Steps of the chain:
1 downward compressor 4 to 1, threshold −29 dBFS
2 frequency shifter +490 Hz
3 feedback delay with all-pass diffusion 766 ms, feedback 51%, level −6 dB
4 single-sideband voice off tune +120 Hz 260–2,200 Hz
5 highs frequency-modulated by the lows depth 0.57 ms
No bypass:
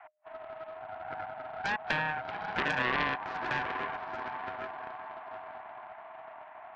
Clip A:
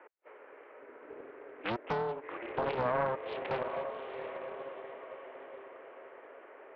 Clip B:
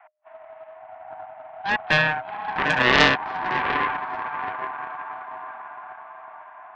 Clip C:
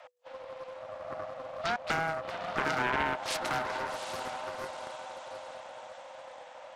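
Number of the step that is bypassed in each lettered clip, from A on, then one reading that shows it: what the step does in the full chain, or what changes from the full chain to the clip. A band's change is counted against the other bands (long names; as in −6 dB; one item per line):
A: 2, 2 kHz band −9.5 dB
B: 1, average gain reduction 2.5 dB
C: 4, 500 Hz band +3.5 dB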